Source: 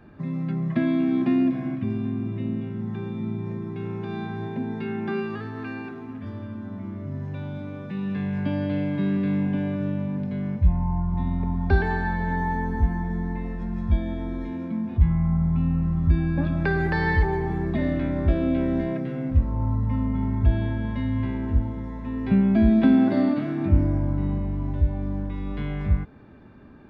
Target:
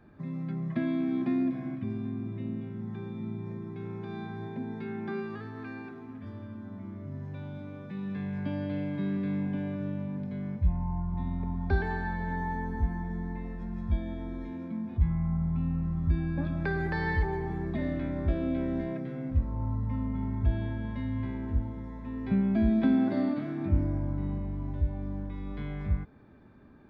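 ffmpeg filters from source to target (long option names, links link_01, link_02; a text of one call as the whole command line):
ffmpeg -i in.wav -af "bandreject=frequency=2800:width=13,volume=-7dB" out.wav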